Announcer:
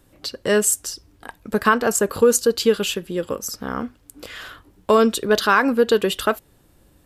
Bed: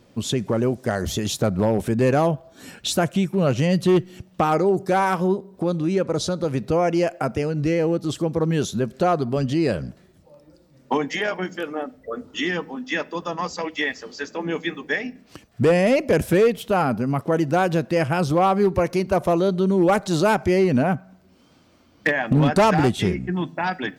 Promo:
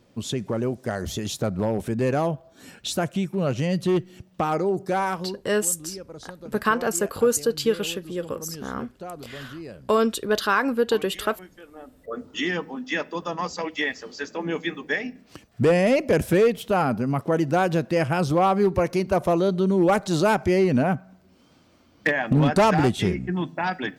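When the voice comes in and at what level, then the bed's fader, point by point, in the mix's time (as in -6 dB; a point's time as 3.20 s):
5.00 s, -5.0 dB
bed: 5.09 s -4.5 dB
5.44 s -17.5 dB
11.72 s -17.5 dB
12.15 s -1.5 dB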